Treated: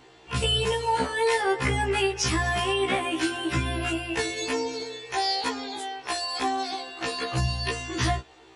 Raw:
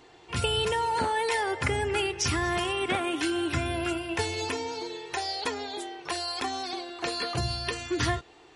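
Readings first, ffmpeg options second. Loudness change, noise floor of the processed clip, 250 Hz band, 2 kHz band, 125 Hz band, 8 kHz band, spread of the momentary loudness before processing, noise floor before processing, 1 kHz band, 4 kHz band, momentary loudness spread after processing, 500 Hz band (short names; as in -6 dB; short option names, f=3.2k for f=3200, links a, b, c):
+2.5 dB, -52 dBFS, +1.5 dB, +2.5 dB, +3.5 dB, +2.0 dB, 8 LU, -54 dBFS, +2.5 dB, +3.0 dB, 8 LU, +2.5 dB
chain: -af "afftfilt=real='re*1.73*eq(mod(b,3),0)':imag='im*1.73*eq(mod(b,3),0)':win_size=2048:overlap=0.75,volume=4.5dB"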